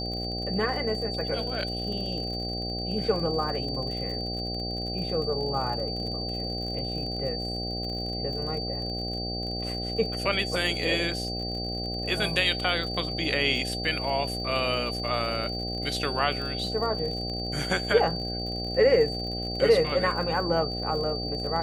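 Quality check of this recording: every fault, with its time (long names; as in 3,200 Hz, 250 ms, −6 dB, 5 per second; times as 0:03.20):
mains buzz 60 Hz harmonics 13 −34 dBFS
surface crackle 51 per second −35 dBFS
whistle 4,600 Hz −33 dBFS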